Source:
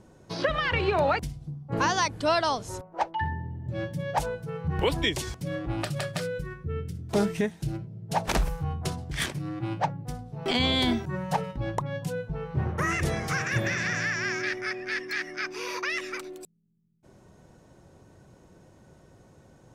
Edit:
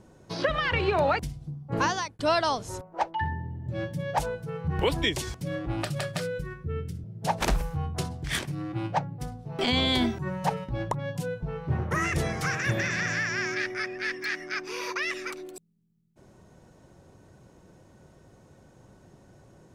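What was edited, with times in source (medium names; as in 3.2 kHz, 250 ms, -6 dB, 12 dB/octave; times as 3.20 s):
1.83–2.19 s: fade out linear
7.04–7.91 s: delete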